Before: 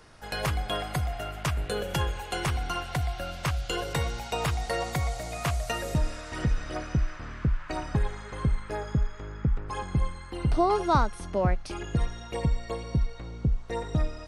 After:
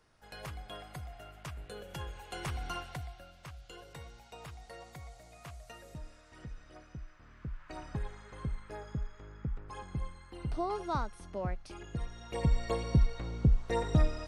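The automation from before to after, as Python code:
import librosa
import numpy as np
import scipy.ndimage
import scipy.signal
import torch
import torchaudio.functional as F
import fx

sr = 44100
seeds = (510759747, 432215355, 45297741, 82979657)

y = fx.gain(x, sr, db=fx.line((1.86, -15.0), (2.74, -7.0), (3.3, -19.5), (7.15, -19.5), (7.83, -11.0), (12.04, -11.0), (12.61, 0.5)))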